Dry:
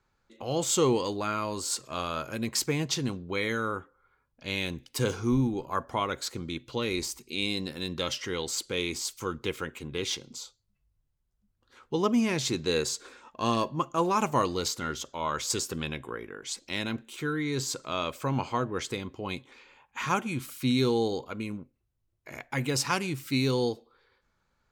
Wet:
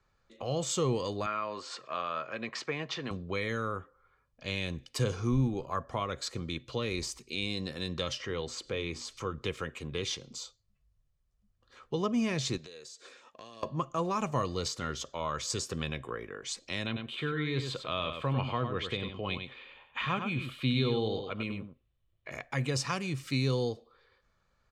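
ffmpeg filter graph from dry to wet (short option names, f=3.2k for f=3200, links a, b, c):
-filter_complex "[0:a]asettb=1/sr,asplit=3[a][b][c];[a]atrim=end=1.264[d];[b]atrim=start=1.26:end=3.11,asetpts=PTS-STARTPTS,afade=t=in:d=0.004:c=qsin,afade=t=out:st=1.846:d=0.004:c=qsin,highpass=190,lowpass=2.2k,tiltshelf=f=670:g=-6[e];[c]atrim=start=3.106[f];[d][e]acrossfade=d=0.004:c1=hsin:c2=qsin[g];[g][f]acrossfade=d=0.004:c1=qsin:c2=hsin,asettb=1/sr,asplit=3[h][i][j];[h]atrim=end=8.204[k];[i]atrim=start=8.2:end=9.38,asetpts=PTS-STARTPTS,afade=t=in:d=0.004:c=qsin,afade=t=out:st=1.176:d=0.004:c=qsin,lowpass=f=2.3k:p=1,acompressor=mode=upward:threshold=-37dB:ratio=2.5:attack=3.2:release=140:knee=2.83:detection=peak,bandreject=f=60:t=h:w=6,bandreject=f=120:t=h:w=6,bandreject=f=180:t=h:w=6,bandreject=f=240:t=h:w=6,bandreject=f=300:t=h:w=6[l];[j]atrim=start=9.376[m];[k][l]acrossfade=d=0.004:c1=hsin:c2=qsin[n];[n][m]acrossfade=d=0.004:c1=qsin:c2=hsin,asettb=1/sr,asplit=3[o][p][q];[o]atrim=end=12.574[r];[p]atrim=start=12.57:end=13.63,asetpts=PTS-STARTPTS,afade=t=in:d=0.004:c=qsin,afade=t=out:st=1.056:d=0.004:c=qsin,highpass=f=480:p=1,equalizer=f=1.1k:w=1.1:g=-6.5,acompressor=threshold=-44dB:ratio=12:attack=3.2:release=140:knee=1:detection=peak[s];[q]atrim=start=13.626[t];[r][s]acrossfade=d=0.004:c1=hsin:c2=qsin[u];[u][t]acrossfade=d=0.004:c1=qsin:c2=hsin,asettb=1/sr,asplit=3[v][w][x];[v]atrim=end=16.864[y];[w]atrim=start=16.86:end=22.31,asetpts=PTS-STARTPTS,afade=t=in:d=0.004:c=qsin,afade=t=out:st=5.446:d=0.004:c=qsin,highshelf=f=4.5k:t=q:w=3:g=-9.5,aecho=1:1:98:0.398,atrim=end_sample=240345[z];[x]atrim=start=22.306[aa];[y][z]acrossfade=d=0.004:c1=hsin:c2=qsin[ab];[ab][aa]acrossfade=d=0.004:c1=qsin:c2=hsin,lowpass=7.6k,aecho=1:1:1.7:0.35,acrossover=split=230[ac][ad];[ad]acompressor=threshold=-34dB:ratio=2[ae];[ac][ae]amix=inputs=2:normalize=0"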